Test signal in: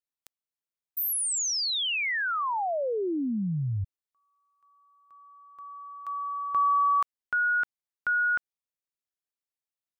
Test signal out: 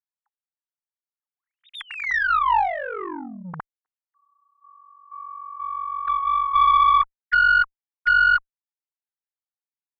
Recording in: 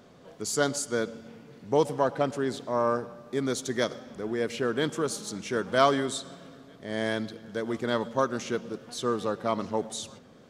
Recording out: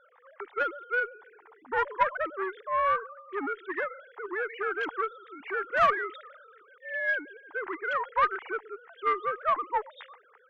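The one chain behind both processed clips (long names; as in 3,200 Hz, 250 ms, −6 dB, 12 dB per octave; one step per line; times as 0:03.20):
three sine waves on the formant tracks
soft clipping −24 dBFS
flat-topped bell 1,300 Hz +15.5 dB
harmonic generator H 2 −20 dB, 3 −20 dB, 4 −45 dB, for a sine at −6.5 dBFS
level −2.5 dB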